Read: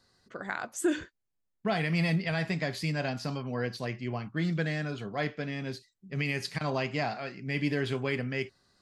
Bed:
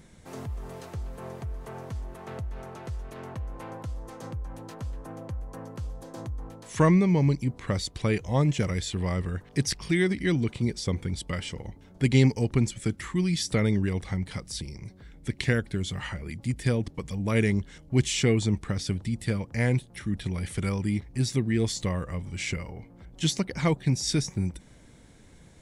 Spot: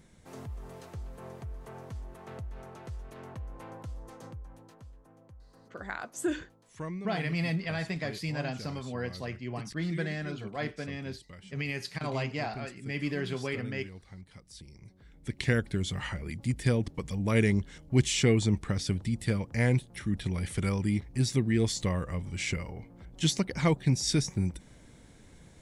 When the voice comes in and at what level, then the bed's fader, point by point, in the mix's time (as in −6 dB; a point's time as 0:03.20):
5.40 s, −3.0 dB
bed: 0:04.14 −5.5 dB
0:05.07 −18 dB
0:14.27 −18 dB
0:15.59 −1 dB